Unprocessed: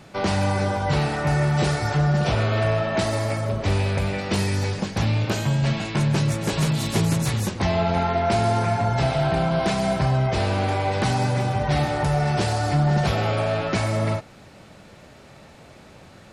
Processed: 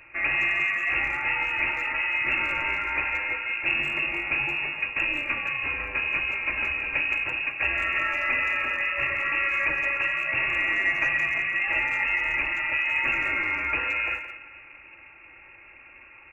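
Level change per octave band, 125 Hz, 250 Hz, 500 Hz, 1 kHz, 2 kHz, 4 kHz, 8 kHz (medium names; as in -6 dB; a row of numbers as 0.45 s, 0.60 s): -27.5 dB, -18.5 dB, -16.5 dB, -8.5 dB, +9.0 dB, -5.0 dB, under -20 dB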